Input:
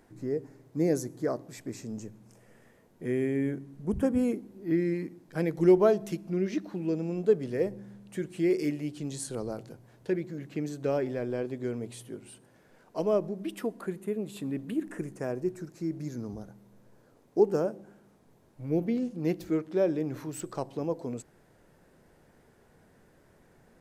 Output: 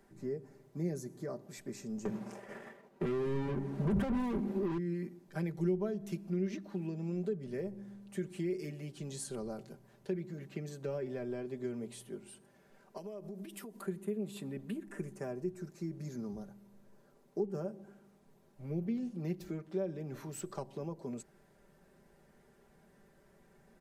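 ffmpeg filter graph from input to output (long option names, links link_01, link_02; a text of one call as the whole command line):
ffmpeg -i in.wav -filter_complex "[0:a]asettb=1/sr,asplit=3[link_01][link_02][link_03];[link_01]atrim=end=2.054[link_04];[link_02]atrim=start=2.05:end=4.78,asetpts=PTS-STARTPTS,afade=type=in:duration=0.004:curve=qsin,afade=type=out:start_time=2.726:duration=0.004:curve=qsin,agate=range=-33dB:threshold=-51dB:ratio=3:release=100:detection=peak,asplit=2[link_05][link_06];[link_06]highpass=frequency=720:poles=1,volume=37dB,asoftclip=type=tanh:threshold=-15dB[link_07];[link_05][link_07]amix=inputs=2:normalize=0,lowpass=frequency=1200:poles=1,volume=-6dB[link_08];[link_03]atrim=start=4.776[link_09];[link_04][link_08]acrossfade=duration=0.004:curve1=hsin:curve2=qsin[link_10];[link_10][link_09]acrossfade=duration=0.004:curve1=qsin:curve2=hsin,asettb=1/sr,asplit=3[link_11][link_12][link_13];[link_11]atrim=end=12.974[link_14];[link_12]atrim=start=12.97:end=13.86,asetpts=PTS-STARTPTS,afade=type=in:duration=0.004:curve=qsin,afade=type=out:start_time=0.886:duration=0.004:curve=qsin,aemphasis=mode=production:type=cd,acompressor=threshold=-38dB:ratio=12:attack=3.2:release=140:knee=1:detection=peak[link_15];[link_13]atrim=start=13.856[link_16];[link_14][link_15]acrossfade=duration=0.004:curve1=hsin:curve2=qsin[link_17];[link_17][link_16]acrossfade=duration=0.004:curve1=qsin:curve2=hsin,acrossover=split=200[link_18][link_19];[link_19]acompressor=threshold=-33dB:ratio=5[link_20];[link_18][link_20]amix=inputs=2:normalize=0,aecho=1:1:5.1:0.66,volume=-5.5dB" out.wav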